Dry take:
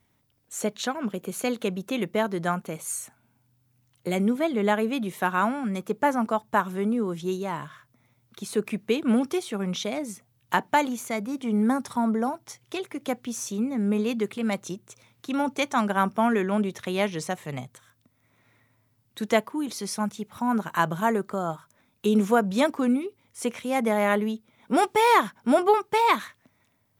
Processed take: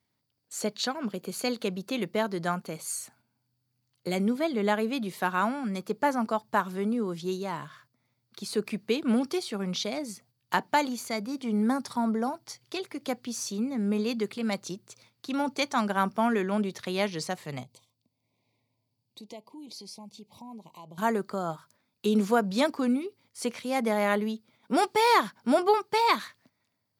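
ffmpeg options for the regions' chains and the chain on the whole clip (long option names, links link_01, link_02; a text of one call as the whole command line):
ffmpeg -i in.wav -filter_complex "[0:a]asettb=1/sr,asplit=3[link_01][link_02][link_03];[link_01]atrim=end=17.634[link_04];[link_02]atrim=start=17.63:end=20.98,asetpts=PTS-STARTPTS,afade=type=in:duration=0.004:curve=qsin,afade=type=out:start_time=3.346:duration=0.004:curve=qsin,highshelf=frequency=4200:gain=-4,acompressor=threshold=-46dB:ratio=2.5:attack=3.2:release=140:knee=1:detection=peak,asuperstop=centerf=1500:order=8:qfactor=1.3[link_05];[link_03]atrim=start=20.976[link_06];[link_04][link_05]acrossfade=duration=0.004:curve1=hsin:curve2=qsin[link_07];[link_07][link_06]acrossfade=duration=0.004:curve1=qsin:curve2=hsin,equalizer=frequency=4600:width=4.6:gain=14,agate=range=-7dB:threshold=-56dB:ratio=16:detection=peak,highpass=90,volume=-3dB" out.wav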